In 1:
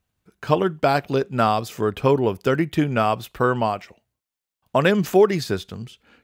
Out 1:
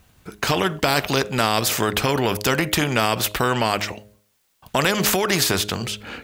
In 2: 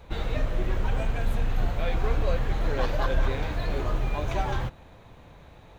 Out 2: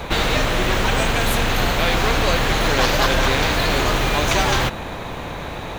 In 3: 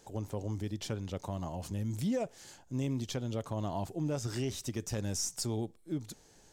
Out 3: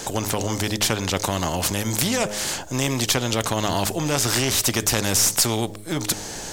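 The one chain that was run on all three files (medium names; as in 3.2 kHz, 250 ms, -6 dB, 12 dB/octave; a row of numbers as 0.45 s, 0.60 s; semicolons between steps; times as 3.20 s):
peak limiter -13.5 dBFS; de-hum 104.2 Hz, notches 6; spectrum-flattening compressor 2:1; peak normalisation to -3 dBFS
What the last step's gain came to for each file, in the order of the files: +9.5 dB, +10.0 dB, +19.5 dB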